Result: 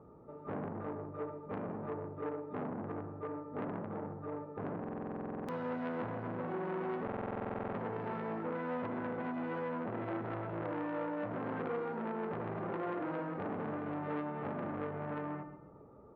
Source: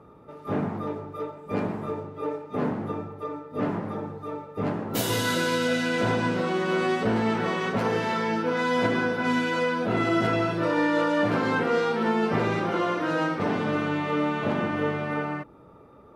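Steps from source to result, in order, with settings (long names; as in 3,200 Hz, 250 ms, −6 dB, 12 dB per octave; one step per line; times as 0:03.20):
low-pass filter 1,000 Hz 12 dB per octave
downward compressor, threshold −27 dBFS, peak gain reduction 7.5 dB
repeating echo 133 ms, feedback 31%, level −11 dB
buffer that repeats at 0:04.79/0:07.03, samples 2,048, times 14
saturating transformer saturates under 970 Hz
level −5 dB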